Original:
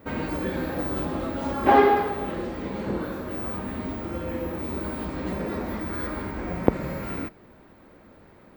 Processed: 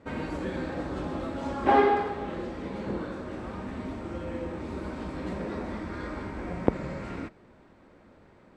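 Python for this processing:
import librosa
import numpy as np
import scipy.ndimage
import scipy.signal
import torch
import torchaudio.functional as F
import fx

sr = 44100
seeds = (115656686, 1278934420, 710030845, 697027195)

y = scipy.signal.sosfilt(scipy.signal.butter(4, 8500.0, 'lowpass', fs=sr, output='sos'), x)
y = F.gain(torch.from_numpy(y), -4.0).numpy()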